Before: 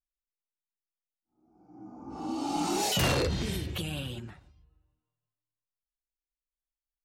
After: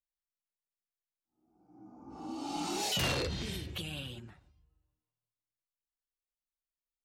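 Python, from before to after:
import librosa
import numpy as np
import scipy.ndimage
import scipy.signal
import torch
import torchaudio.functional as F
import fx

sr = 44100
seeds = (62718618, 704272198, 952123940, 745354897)

y = fx.dynamic_eq(x, sr, hz=3500.0, q=0.72, threshold_db=-45.0, ratio=4.0, max_db=5)
y = y * librosa.db_to_amplitude(-7.0)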